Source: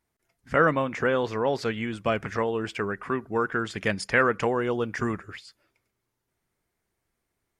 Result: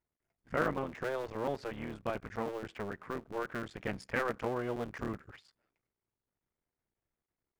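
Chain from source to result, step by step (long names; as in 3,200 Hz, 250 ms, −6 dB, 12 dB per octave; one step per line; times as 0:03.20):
sub-harmonics by changed cycles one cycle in 3, muted
high-shelf EQ 2,600 Hz −10 dB
level −8 dB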